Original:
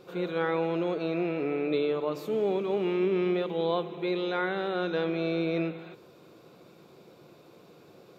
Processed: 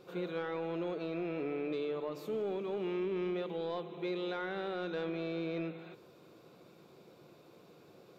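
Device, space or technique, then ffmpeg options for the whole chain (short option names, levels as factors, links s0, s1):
soft clipper into limiter: -af "asoftclip=type=tanh:threshold=0.119,alimiter=level_in=1.06:limit=0.0631:level=0:latency=1:release=311,volume=0.944,volume=0.596"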